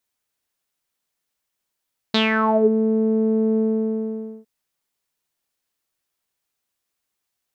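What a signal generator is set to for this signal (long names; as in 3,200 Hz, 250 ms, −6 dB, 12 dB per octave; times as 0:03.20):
subtractive voice saw A3 12 dB per octave, low-pass 370 Hz, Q 7.7, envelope 3.5 octaves, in 0.55 s, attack 4.8 ms, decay 0.15 s, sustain −4 dB, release 0.87 s, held 1.44 s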